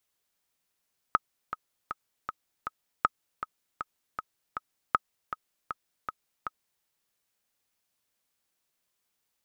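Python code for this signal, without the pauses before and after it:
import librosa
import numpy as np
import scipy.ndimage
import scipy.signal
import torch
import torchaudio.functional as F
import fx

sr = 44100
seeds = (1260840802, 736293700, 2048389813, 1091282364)

y = fx.click_track(sr, bpm=158, beats=5, bars=3, hz=1270.0, accent_db=11.5, level_db=-8.0)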